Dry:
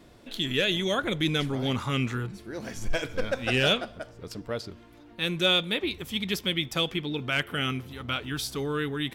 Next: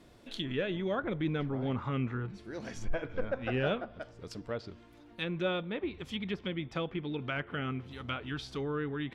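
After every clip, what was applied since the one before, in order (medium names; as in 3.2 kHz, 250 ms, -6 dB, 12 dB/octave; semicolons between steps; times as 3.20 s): low-pass that closes with the level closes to 1.5 kHz, closed at -25 dBFS; trim -4.5 dB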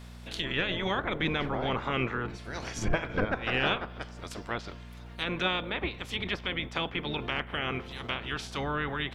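spectral peaks clipped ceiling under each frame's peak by 19 dB; mains buzz 60 Hz, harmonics 4, -49 dBFS -5 dB/octave; trim +3 dB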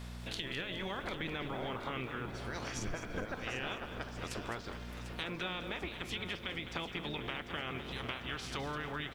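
compression 6:1, threshold -38 dBFS, peak gain reduction 15.5 dB; on a send: feedback delay 746 ms, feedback 50%, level -11.5 dB; on the sum: bit-crushed delay 207 ms, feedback 35%, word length 10-bit, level -10 dB; trim +1 dB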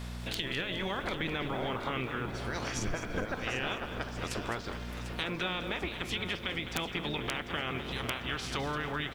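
integer overflow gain 24 dB; trim +5 dB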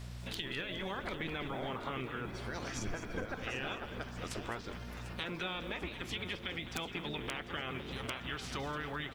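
coarse spectral quantiser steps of 15 dB; trim -4.5 dB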